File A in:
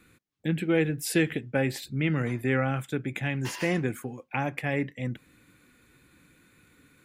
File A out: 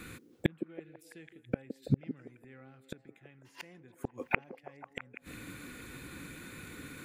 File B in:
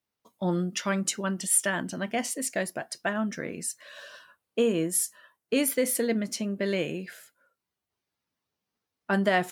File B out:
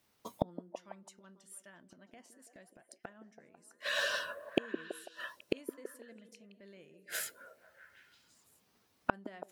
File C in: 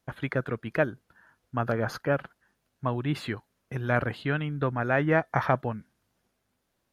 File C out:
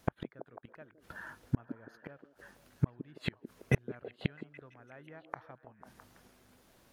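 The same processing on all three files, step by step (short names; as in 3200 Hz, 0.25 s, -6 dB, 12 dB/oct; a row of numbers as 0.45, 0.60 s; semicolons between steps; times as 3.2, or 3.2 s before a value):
flipped gate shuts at -27 dBFS, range -41 dB; delay with a stepping band-pass 0.165 s, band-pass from 320 Hz, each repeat 0.7 oct, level -6 dB; gain +12.5 dB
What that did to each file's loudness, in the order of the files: -11.0, -11.0, -10.5 LU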